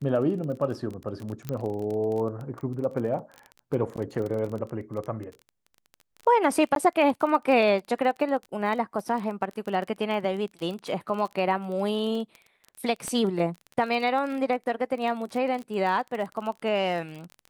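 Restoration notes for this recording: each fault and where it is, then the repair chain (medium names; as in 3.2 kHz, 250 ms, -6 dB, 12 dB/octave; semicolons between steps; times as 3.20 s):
crackle 27 per s -32 dBFS
1.49 s: pop -18 dBFS
6.75–6.76 s: dropout 12 ms
13.08 s: pop -18 dBFS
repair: de-click; interpolate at 6.75 s, 12 ms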